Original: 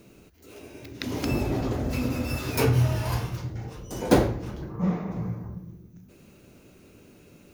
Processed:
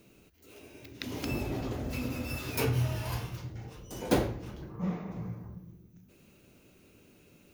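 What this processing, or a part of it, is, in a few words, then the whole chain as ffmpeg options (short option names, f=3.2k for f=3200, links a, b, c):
presence and air boost: -af "equalizer=f=2.9k:t=o:w=0.97:g=4,highshelf=f=10k:g=6,volume=-7.5dB"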